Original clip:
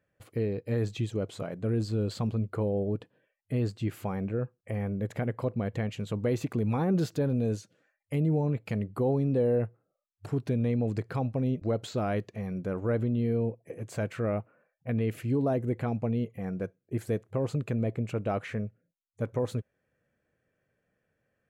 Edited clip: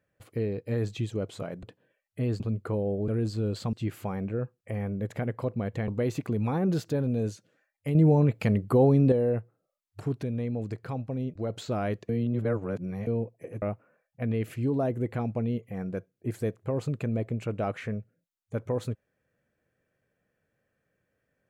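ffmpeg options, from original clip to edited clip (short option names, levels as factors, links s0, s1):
-filter_complex "[0:a]asplit=13[s0][s1][s2][s3][s4][s5][s6][s7][s8][s9][s10][s11][s12];[s0]atrim=end=1.632[s13];[s1]atrim=start=2.958:end=3.732[s14];[s2]atrim=start=2.278:end=2.962[s15];[s3]atrim=start=1.628:end=2.282[s16];[s4]atrim=start=3.728:end=5.882[s17];[s5]atrim=start=6.138:end=8.212[s18];[s6]atrim=start=8.208:end=9.382,asetpts=PTS-STARTPTS,volume=2.11[s19];[s7]atrim=start=9.378:end=10.492[s20];[s8]atrim=start=10.488:end=11.762,asetpts=PTS-STARTPTS,volume=0.668[s21];[s9]atrim=start=11.758:end=12.352[s22];[s10]atrim=start=12.348:end=13.332,asetpts=PTS-STARTPTS,areverse[s23];[s11]atrim=start=13.328:end=13.882[s24];[s12]atrim=start=14.288[s25];[s13][s14]acrossfade=d=0.004:c1=hsin:c2=hsin[s26];[s26][s15]acrossfade=d=0.004:c1=hsin:c2=hsin[s27];[s27][s16]acrossfade=d=0.004:c1=hsin:c2=hsin[s28];[s28][s17]acrossfade=d=0.004:c1=hsin:c2=hsin[s29];[s29][s18]acrossfade=d=0.004:c1=hsin:c2=hsin[s30];[s30][s19]acrossfade=d=0.004:c1=hsin:c2=hsin[s31];[s31][s20]acrossfade=d=0.004:c1=hsin:c2=hsin[s32];[s32][s21]acrossfade=d=0.004:c1=hsin:c2=hsin[s33];[s33][s22]acrossfade=d=0.004:c1=hsin:c2=hsin[s34];[s34][s23]acrossfade=d=0.004:c1=hsin:c2=hsin[s35];[s35][s24]acrossfade=d=0.004:c1=hsin:c2=hsin[s36];[s36][s25]acrossfade=d=0.004:c1=hsin:c2=hsin"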